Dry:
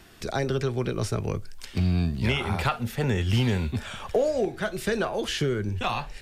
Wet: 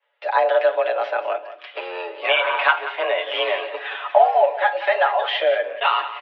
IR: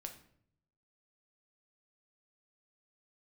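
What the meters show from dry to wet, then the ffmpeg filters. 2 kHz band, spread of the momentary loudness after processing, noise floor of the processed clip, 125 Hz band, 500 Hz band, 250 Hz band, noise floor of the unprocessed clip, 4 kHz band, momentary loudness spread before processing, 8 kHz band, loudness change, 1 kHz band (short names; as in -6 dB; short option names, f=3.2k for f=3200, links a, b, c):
+11.0 dB, 12 LU, -45 dBFS, under -40 dB, +8.5 dB, -19.5 dB, -43 dBFS, +7.5 dB, 6 LU, under -25 dB, +7.0 dB, +14.0 dB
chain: -filter_complex "[0:a]agate=range=-33dB:threshold=-37dB:ratio=3:detection=peak,aecho=1:1:7.5:0.89,aecho=1:1:181:0.224,asplit=2[a][b];[1:a]atrim=start_sample=2205[c];[b][c]afir=irnorm=-1:irlink=0,volume=1dB[d];[a][d]amix=inputs=2:normalize=0,highpass=f=360:t=q:w=0.5412,highpass=f=360:t=q:w=1.307,lowpass=f=3k:t=q:w=0.5176,lowpass=f=3k:t=q:w=0.7071,lowpass=f=3k:t=q:w=1.932,afreqshift=180,volume=3dB"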